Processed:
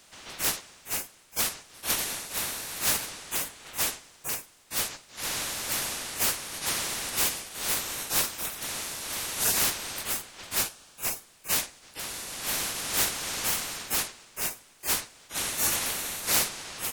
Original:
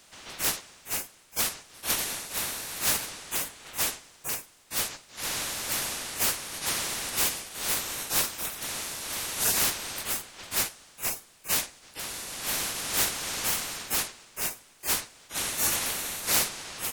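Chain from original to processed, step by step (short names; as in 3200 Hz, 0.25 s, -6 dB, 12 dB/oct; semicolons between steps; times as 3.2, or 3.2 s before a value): 10.61–11.06 notch 2000 Hz, Q 7.3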